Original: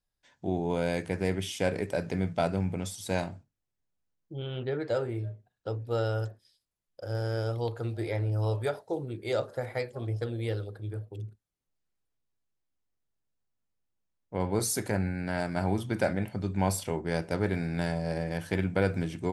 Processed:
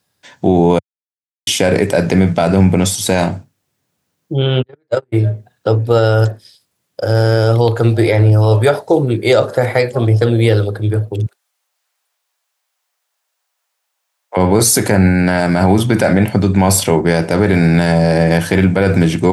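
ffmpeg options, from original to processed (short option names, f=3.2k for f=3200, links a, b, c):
-filter_complex "[0:a]asplit=3[a][b][c];[a]afade=t=out:st=4.61:d=0.02[d];[b]agate=range=-52dB:threshold=-26dB:ratio=16:release=100:detection=peak,afade=t=in:st=4.61:d=0.02,afade=t=out:st=5.12:d=0.02[e];[c]afade=t=in:st=5.12:d=0.02[f];[d][e][f]amix=inputs=3:normalize=0,asettb=1/sr,asplit=3[g][h][i];[g]atrim=end=11.264[j];[h]atrim=start=11.26:end=14.37,asetpts=PTS-STARTPTS,afade=t=in:d=0.004:c=qsin,afade=t=out:st=3.106:d=0.004:c=qsin,highpass=f=660:w=0.5412,highpass=f=660:w=1.3066[k];[i]atrim=start=14.366[l];[j][k]acrossfade=d=0.004:c1=hsin:c2=qsin[m];[m][l]acrossfade=d=0.004:c1=qsin:c2=hsin,asplit=3[n][o][p];[n]atrim=end=0.79,asetpts=PTS-STARTPTS,afade=t=out:st=0.786:d=0.004:c=hsin[q];[o]atrim=start=0.79:end=1.47,asetpts=PTS-STARTPTS,volume=0[r];[p]atrim=start=1.47,asetpts=PTS-STARTPTS,afade=t=in:d=0.004:c=hsin[s];[q][r][s]concat=n=3:v=0:a=1,highpass=f=94:w=0.5412,highpass=f=94:w=1.3066,alimiter=level_in=23dB:limit=-1dB:release=50:level=0:latency=1,volume=-1dB"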